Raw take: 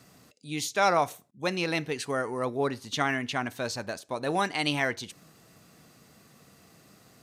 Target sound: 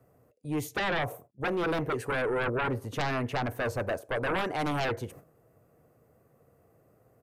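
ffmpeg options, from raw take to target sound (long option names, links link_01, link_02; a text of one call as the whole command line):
ffmpeg -i in.wav -filter_complex "[0:a]agate=range=-13dB:threshold=-51dB:ratio=16:detection=peak,firequalizer=gain_entry='entry(120,0);entry(180,-11);entry(490,3);entry(840,-6);entry(3900,-29);entry(12000,-10)':delay=0.05:min_phase=1,acrossover=split=340[link_01][link_02];[link_02]acompressor=threshold=-30dB:ratio=6[link_03];[link_01][link_03]amix=inputs=2:normalize=0,aeval=exprs='0.126*sin(PI/2*5.62*val(0)/0.126)':channel_layout=same,volume=-7.5dB" out.wav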